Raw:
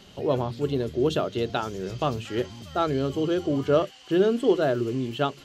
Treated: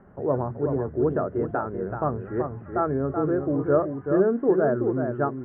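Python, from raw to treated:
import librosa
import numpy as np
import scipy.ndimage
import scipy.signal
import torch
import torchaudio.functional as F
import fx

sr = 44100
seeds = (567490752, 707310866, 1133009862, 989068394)

y = scipy.signal.sosfilt(scipy.signal.butter(8, 1700.0, 'lowpass', fs=sr, output='sos'), x)
y = y + 10.0 ** (-6.5 / 20.0) * np.pad(y, (int(379 * sr / 1000.0), 0))[:len(y)]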